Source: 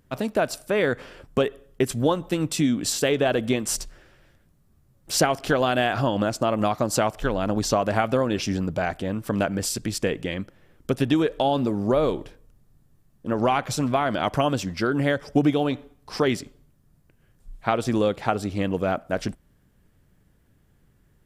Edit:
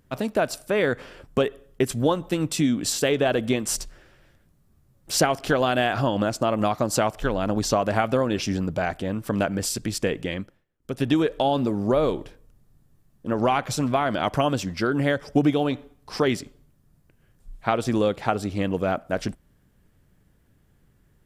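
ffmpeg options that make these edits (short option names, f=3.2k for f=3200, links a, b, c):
-filter_complex "[0:a]asplit=3[a][b][c];[a]atrim=end=10.65,asetpts=PTS-STARTPTS,afade=t=out:st=10.36:d=0.29:silence=0.0668344[d];[b]atrim=start=10.65:end=10.79,asetpts=PTS-STARTPTS,volume=-23.5dB[e];[c]atrim=start=10.79,asetpts=PTS-STARTPTS,afade=t=in:d=0.29:silence=0.0668344[f];[d][e][f]concat=n=3:v=0:a=1"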